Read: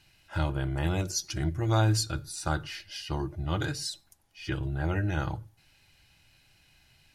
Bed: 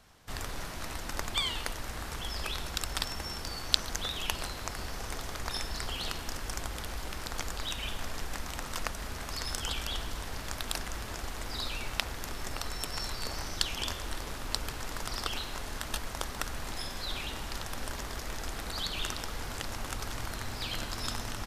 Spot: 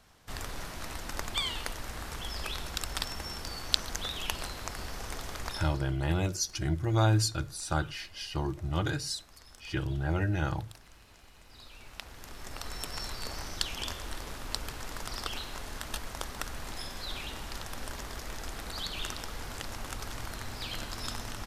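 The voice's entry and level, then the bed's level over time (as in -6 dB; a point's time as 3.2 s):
5.25 s, -0.5 dB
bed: 5.48 s -1 dB
5.96 s -19 dB
11.43 s -19 dB
12.75 s -2 dB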